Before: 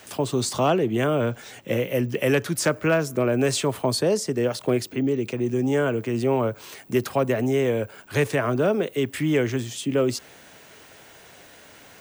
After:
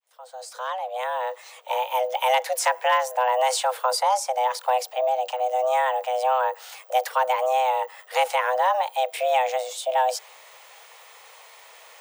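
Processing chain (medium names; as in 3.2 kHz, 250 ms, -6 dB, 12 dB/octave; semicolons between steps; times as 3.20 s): fade-in on the opening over 2.11 s; frequency shift +380 Hz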